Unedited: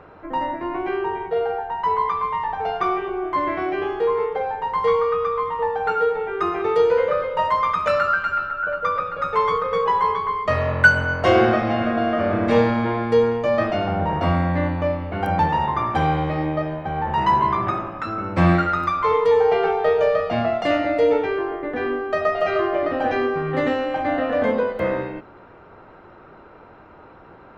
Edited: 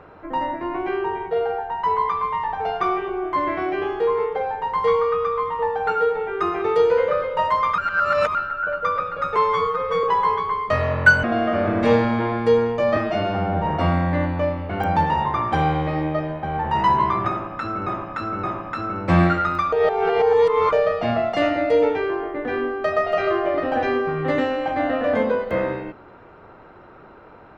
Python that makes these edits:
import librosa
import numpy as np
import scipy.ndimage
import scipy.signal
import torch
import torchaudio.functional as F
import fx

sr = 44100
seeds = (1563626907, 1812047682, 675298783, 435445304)

y = fx.edit(x, sr, fx.reverse_span(start_s=7.78, length_s=0.57),
    fx.stretch_span(start_s=9.36, length_s=0.45, factor=1.5),
    fx.cut(start_s=11.01, length_s=0.88),
    fx.stretch_span(start_s=13.62, length_s=0.46, factor=1.5),
    fx.repeat(start_s=17.72, length_s=0.57, count=3),
    fx.reverse_span(start_s=19.01, length_s=1.0), tone=tone)